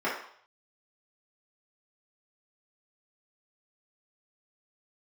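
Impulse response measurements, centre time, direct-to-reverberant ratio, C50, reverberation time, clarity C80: 40 ms, -9.5 dB, 3.5 dB, 0.60 s, 8.0 dB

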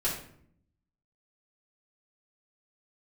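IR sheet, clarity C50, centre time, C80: 5.0 dB, 33 ms, 9.0 dB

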